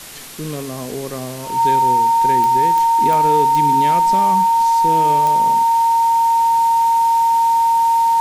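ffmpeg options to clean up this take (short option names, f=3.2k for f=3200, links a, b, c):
-af "adeclick=t=4,bandreject=f=920:w=30,afwtdn=0.02"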